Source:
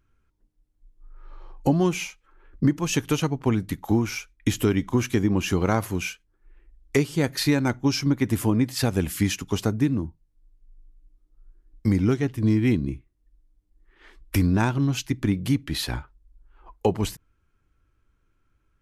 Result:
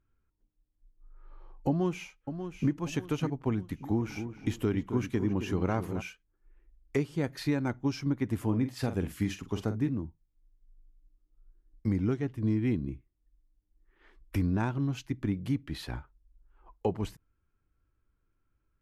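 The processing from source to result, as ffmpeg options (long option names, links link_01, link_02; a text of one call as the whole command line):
ffmpeg -i in.wav -filter_complex "[0:a]asplit=2[link_01][link_02];[link_02]afade=type=in:start_time=1.68:duration=0.01,afade=type=out:start_time=2.73:duration=0.01,aecho=0:1:590|1180|1770|2360:0.354813|0.141925|0.0567701|0.0227081[link_03];[link_01][link_03]amix=inputs=2:normalize=0,asplit=3[link_04][link_05][link_06];[link_04]afade=type=out:start_time=3.99:duration=0.02[link_07];[link_05]asplit=2[link_08][link_09];[link_09]adelay=268,lowpass=frequency=1600:poles=1,volume=-9dB,asplit=2[link_10][link_11];[link_11]adelay=268,lowpass=frequency=1600:poles=1,volume=0.45,asplit=2[link_12][link_13];[link_13]adelay=268,lowpass=frequency=1600:poles=1,volume=0.45,asplit=2[link_14][link_15];[link_15]adelay=268,lowpass=frequency=1600:poles=1,volume=0.45,asplit=2[link_16][link_17];[link_17]adelay=268,lowpass=frequency=1600:poles=1,volume=0.45[link_18];[link_08][link_10][link_12][link_14][link_16][link_18]amix=inputs=6:normalize=0,afade=type=in:start_time=3.99:duration=0.02,afade=type=out:start_time=6:duration=0.02[link_19];[link_06]afade=type=in:start_time=6:duration=0.02[link_20];[link_07][link_19][link_20]amix=inputs=3:normalize=0,asettb=1/sr,asplit=3[link_21][link_22][link_23];[link_21]atrim=end=8.444[link_24];[link_22]atrim=start=8.44:end=9.89,asetpts=PTS-STARTPTS,afade=type=in:duration=0.004:curve=qsin,afade=type=out:start_time=1.446:duration=0.004:curve=qsin,asplit=2[link_25][link_26];[link_26]adelay=46,volume=-10dB[link_27];[link_25][link_27]amix=inputs=2:normalize=0,atrim=end_sample=63945[link_28];[link_23]atrim=start=9.886[link_29];[link_24][link_28]acrossfade=duration=0.004:curve1=hsin:curve2=qsin[link_30];[link_30][link_29]acrossfade=duration=0.004:curve1=qsin:curve2=hsin,highshelf=frequency=3200:gain=-11,volume=-7.5dB" out.wav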